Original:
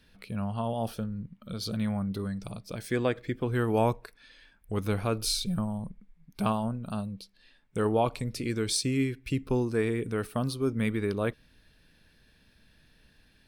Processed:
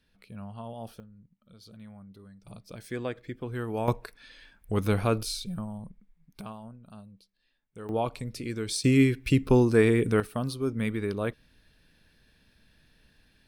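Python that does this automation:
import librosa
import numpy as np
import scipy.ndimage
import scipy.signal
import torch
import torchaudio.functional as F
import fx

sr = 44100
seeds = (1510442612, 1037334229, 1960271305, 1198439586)

y = fx.gain(x, sr, db=fx.steps((0.0, -9.0), (1.0, -17.5), (2.47, -6.0), (3.88, 3.5), (5.23, -5.0), (6.41, -14.0), (7.89, -3.0), (8.84, 7.0), (10.2, -1.0)))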